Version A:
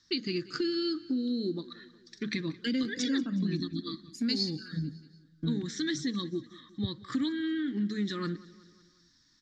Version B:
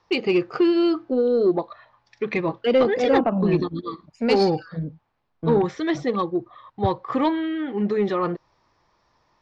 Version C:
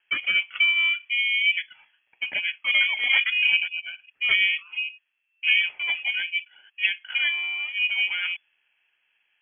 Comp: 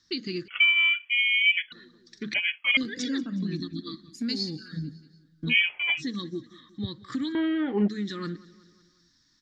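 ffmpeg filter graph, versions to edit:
-filter_complex "[2:a]asplit=3[a][b][c];[0:a]asplit=5[d][e][f][g][h];[d]atrim=end=0.482[i];[a]atrim=start=0.478:end=1.722[j];[e]atrim=start=1.718:end=2.342[k];[b]atrim=start=2.338:end=2.772[l];[f]atrim=start=2.768:end=5.55[m];[c]atrim=start=5.49:end=6.03[n];[g]atrim=start=5.97:end=7.352[o];[1:a]atrim=start=7.348:end=7.882[p];[h]atrim=start=7.878[q];[i][j]acrossfade=d=0.004:c1=hsin:c2=hsin[r];[r][k]acrossfade=d=0.004:c1=hsin:c2=hsin[s];[s][l]acrossfade=d=0.004:c1=hsin:c2=hsin[t];[t][m]acrossfade=d=0.004:c1=hsin:c2=hsin[u];[u][n]acrossfade=d=0.06:c1=tri:c2=tri[v];[v][o]acrossfade=d=0.06:c1=tri:c2=tri[w];[w][p]acrossfade=d=0.004:c1=hsin:c2=hsin[x];[x][q]acrossfade=d=0.004:c1=hsin:c2=hsin"

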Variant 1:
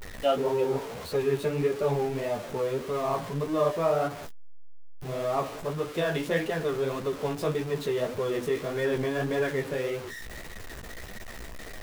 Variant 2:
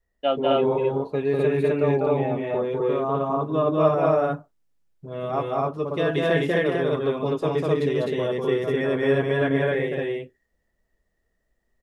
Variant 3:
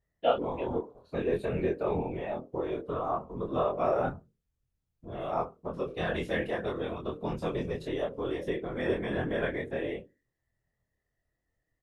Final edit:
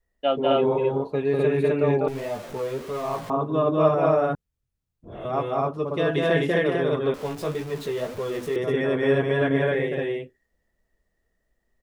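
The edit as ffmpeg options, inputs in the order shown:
-filter_complex "[0:a]asplit=2[a][b];[1:a]asplit=4[c][d][e][f];[c]atrim=end=2.082[g];[a]atrim=start=2.078:end=3.302[h];[d]atrim=start=3.298:end=4.352[i];[2:a]atrim=start=4.348:end=5.252[j];[e]atrim=start=5.248:end=7.142[k];[b]atrim=start=7.138:end=8.562[l];[f]atrim=start=8.558[m];[g][h]acrossfade=d=0.004:c1=hsin:c2=hsin[n];[n][i]acrossfade=d=0.004:c1=hsin:c2=hsin[o];[o][j]acrossfade=d=0.004:c1=hsin:c2=hsin[p];[p][k]acrossfade=d=0.004:c1=hsin:c2=hsin[q];[q][l]acrossfade=d=0.004:c1=hsin:c2=hsin[r];[r][m]acrossfade=d=0.004:c1=hsin:c2=hsin"

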